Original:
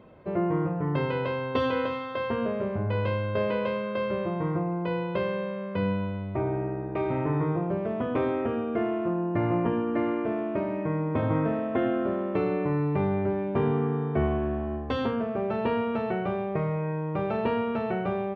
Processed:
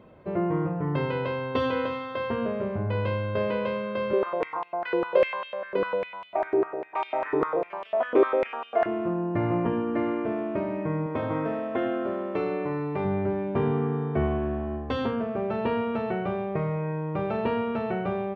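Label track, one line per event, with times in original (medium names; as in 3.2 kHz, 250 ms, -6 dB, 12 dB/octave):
4.130000	8.860000	step-sequenced high-pass 10 Hz 380–3000 Hz
11.060000	13.050000	tone controls bass -8 dB, treble +4 dB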